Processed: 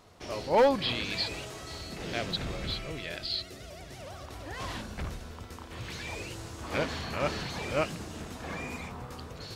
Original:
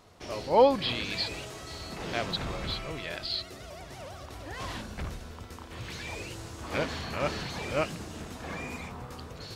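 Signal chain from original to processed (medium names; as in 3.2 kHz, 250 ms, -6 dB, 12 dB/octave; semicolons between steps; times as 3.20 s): 1.81–4.07 s: peaking EQ 1 kHz -7 dB 0.91 oct; hard clipper -17 dBFS, distortion -14 dB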